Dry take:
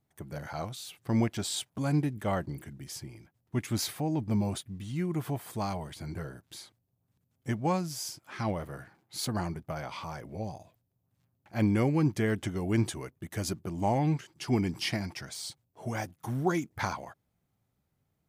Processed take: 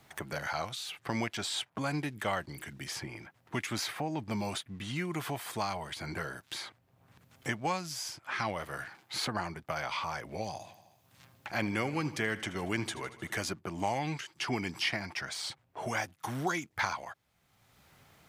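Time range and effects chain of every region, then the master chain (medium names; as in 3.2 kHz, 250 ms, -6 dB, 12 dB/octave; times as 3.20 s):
10.46–13.36 s: high-pass 40 Hz + feedback delay 77 ms, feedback 58%, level -17 dB
whole clip: low-pass 2.6 kHz 6 dB/octave; tilt shelf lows -9.5 dB, about 680 Hz; three bands compressed up and down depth 70%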